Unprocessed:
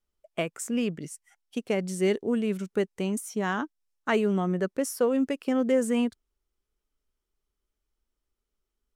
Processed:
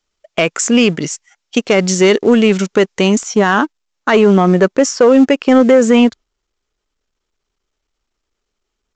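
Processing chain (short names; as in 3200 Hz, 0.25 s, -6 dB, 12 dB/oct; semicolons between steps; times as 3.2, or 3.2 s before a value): high shelf 2200 Hz +5 dB, from 3.23 s -2 dB; sample leveller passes 1; low shelf 270 Hz -7.5 dB; gate -46 dBFS, range -7 dB; maximiser +18.5 dB; gain -1 dB; µ-law 128 kbps 16000 Hz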